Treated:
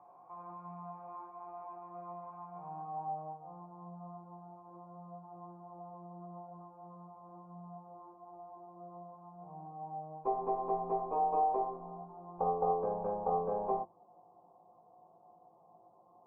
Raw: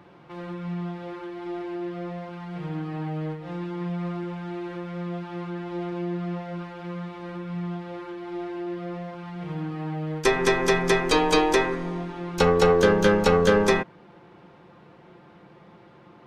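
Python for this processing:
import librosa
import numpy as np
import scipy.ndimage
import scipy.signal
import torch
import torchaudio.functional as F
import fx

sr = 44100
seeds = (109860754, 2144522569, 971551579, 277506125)

y = fx.filter_sweep_lowpass(x, sr, from_hz=2100.0, to_hz=610.0, start_s=2.26, end_s=3.75, q=0.86)
y = fx.formant_cascade(y, sr, vowel='a')
y = fx.hum_notches(y, sr, base_hz=50, count=7)
y = fx.doubler(y, sr, ms=18.0, db=-4)
y = y * 10.0 ** (4.0 / 20.0)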